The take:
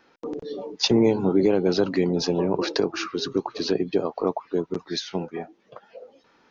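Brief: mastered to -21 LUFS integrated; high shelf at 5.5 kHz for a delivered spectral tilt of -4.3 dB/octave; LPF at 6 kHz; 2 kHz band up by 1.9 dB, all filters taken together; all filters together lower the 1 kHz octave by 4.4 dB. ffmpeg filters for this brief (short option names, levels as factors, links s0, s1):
-af "lowpass=6000,equalizer=f=1000:t=o:g=-7,equalizer=f=2000:t=o:g=3.5,highshelf=f=5500:g=8,volume=1.5"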